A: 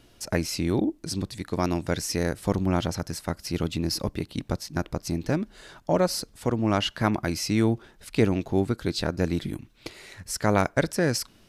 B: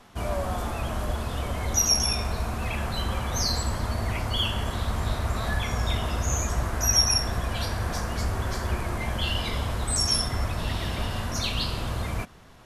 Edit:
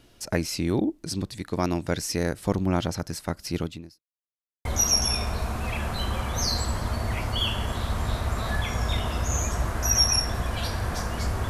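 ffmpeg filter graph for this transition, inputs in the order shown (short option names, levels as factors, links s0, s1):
-filter_complex "[0:a]apad=whole_dur=11.49,atrim=end=11.49,asplit=2[s0][s1];[s0]atrim=end=4.02,asetpts=PTS-STARTPTS,afade=t=out:st=3.58:d=0.44:c=qua[s2];[s1]atrim=start=4.02:end=4.65,asetpts=PTS-STARTPTS,volume=0[s3];[1:a]atrim=start=1.63:end=8.47,asetpts=PTS-STARTPTS,afade=t=in:d=0.004:c=hsin[s4];[s2][s3][s4]concat=n=3:v=0:a=1"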